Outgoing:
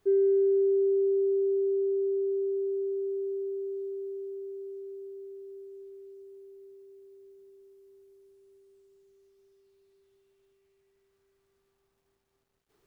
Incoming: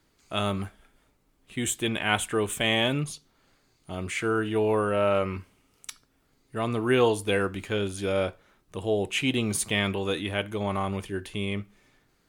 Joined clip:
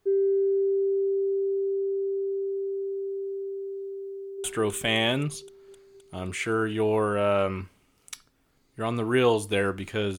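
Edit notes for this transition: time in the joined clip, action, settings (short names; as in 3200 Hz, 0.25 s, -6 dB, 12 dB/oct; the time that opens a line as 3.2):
outgoing
4.12–4.44 echo throw 0.26 s, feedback 75%, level -4 dB
4.44 switch to incoming from 2.2 s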